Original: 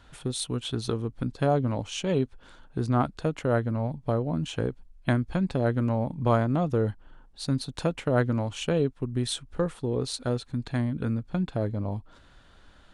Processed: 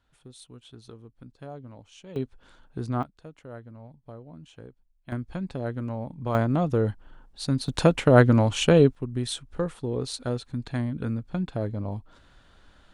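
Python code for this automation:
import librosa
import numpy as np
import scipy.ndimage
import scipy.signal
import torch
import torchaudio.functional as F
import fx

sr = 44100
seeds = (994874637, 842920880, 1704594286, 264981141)

y = fx.gain(x, sr, db=fx.steps((0.0, -17.0), (2.16, -4.0), (3.03, -17.0), (5.12, -6.0), (6.35, 1.5), (7.68, 8.0), (8.95, -1.0)))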